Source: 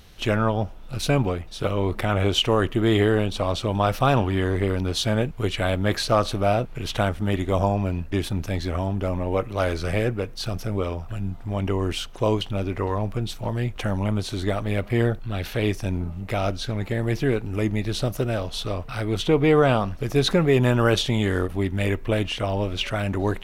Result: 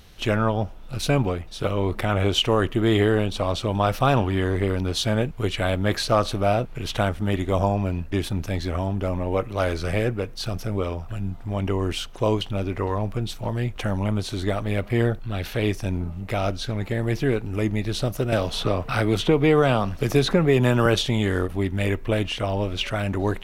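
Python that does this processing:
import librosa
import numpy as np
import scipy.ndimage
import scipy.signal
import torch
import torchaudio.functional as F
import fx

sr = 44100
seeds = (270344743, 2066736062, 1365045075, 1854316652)

y = fx.band_squash(x, sr, depth_pct=70, at=(18.32, 20.86))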